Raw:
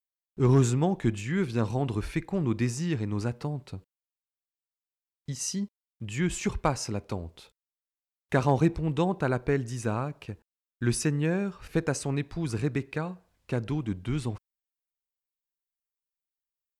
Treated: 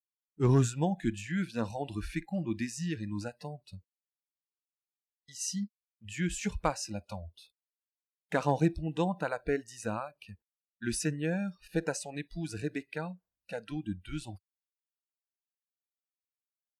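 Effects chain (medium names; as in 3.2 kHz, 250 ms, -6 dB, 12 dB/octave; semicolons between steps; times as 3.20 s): spectral noise reduction 23 dB; trim -3 dB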